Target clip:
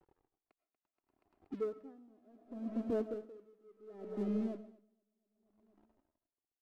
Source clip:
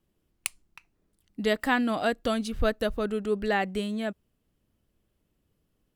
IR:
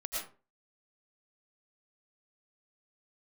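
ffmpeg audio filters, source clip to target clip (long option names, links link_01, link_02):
-filter_complex "[0:a]asuperpass=centerf=270:order=4:qfactor=1,acompressor=mode=upward:threshold=-37dB:ratio=2.5,agate=range=-33dB:threshold=-56dB:ratio=3:detection=peak,aeval=exprs='sgn(val(0))*max(abs(val(0))-0.00266,0)':channel_layout=same,flanger=delay=2.2:depth=1.1:regen=-11:speed=0.65:shape=triangular,atempo=0.9,asoftclip=type=tanh:threshold=-29dB,aecho=1:1:238|476|714|952|1190|1428:0.355|0.174|0.0852|0.0417|0.0205|0.01,asplit=2[link_01][link_02];[1:a]atrim=start_sample=2205[link_03];[link_02][link_03]afir=irnorm=-1:irlink=0,volume=-10dB[link_04];[link_01][link_04]amix=inputs=2:normalize=0,aeval=exprs='val(0)*pow(10,-31*(0.5-0.5*cos(2*PI*0.69*n/s))/20)':channel_layout=same,volume=2dB"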